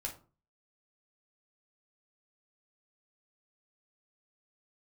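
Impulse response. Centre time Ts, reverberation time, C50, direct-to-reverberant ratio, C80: 15 ms, 0.40 s, 11.0 dB, 0.0 dB, 17.0 dB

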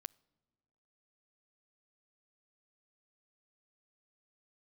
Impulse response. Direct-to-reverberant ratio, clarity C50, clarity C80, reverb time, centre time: 21.0 dB, 26.5 dB, 29.0 dB, no single decay rate, 1 ms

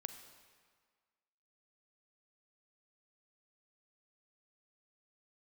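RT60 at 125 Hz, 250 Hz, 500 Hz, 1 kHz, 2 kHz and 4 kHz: 1.4 s, 1.6 s, 1.6 s, 1.8 s, 1.6 s, 1.4 s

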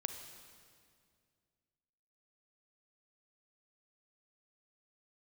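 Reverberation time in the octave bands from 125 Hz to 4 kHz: 2.7 s, 2.6 s, 2.3 s, 2.0 s, 1.9 s, 1.9 s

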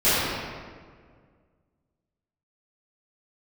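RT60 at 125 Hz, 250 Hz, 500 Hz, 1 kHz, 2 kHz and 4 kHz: 2.3 s, 2.2 s, 2.0 s, 1.7 s, 1.4 s, 1.1 s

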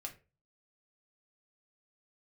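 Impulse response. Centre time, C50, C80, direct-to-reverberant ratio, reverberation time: 10 ms, 14.0 dB, 20.0 dB, 0.5 dB, 0.30 s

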